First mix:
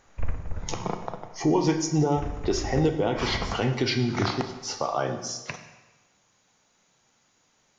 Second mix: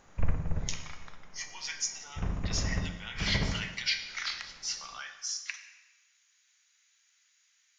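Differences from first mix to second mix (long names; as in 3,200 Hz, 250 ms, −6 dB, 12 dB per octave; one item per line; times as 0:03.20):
speech: add Chebyshev high-pass filter 1,800 Hz, order 3
master: add parametric band 160 Hz +9 dB 0.68 octaves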